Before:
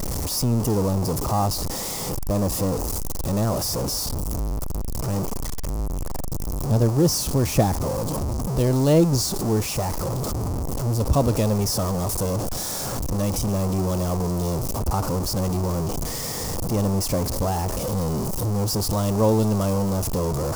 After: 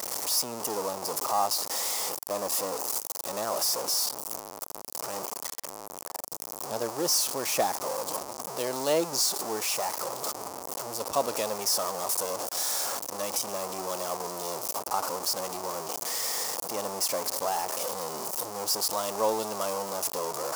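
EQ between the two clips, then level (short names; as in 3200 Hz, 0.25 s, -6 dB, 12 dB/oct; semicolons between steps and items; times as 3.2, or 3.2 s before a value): HPF 680 Hz 12 dB/oct; 0.0 dB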